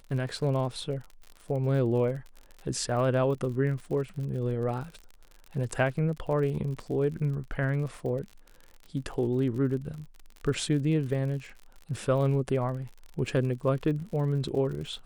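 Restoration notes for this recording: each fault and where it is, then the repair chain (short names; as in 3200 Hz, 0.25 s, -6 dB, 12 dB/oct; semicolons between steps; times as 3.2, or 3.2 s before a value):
crackle 56/s -37 dBFS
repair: de-click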